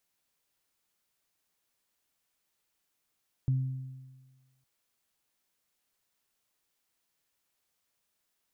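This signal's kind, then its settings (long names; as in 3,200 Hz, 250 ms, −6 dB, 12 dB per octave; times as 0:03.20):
harmonic partials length 1.16 s, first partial 131 Hz, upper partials −18 dB, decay 1.38 s, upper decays 1.30 s, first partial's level −22.5 dB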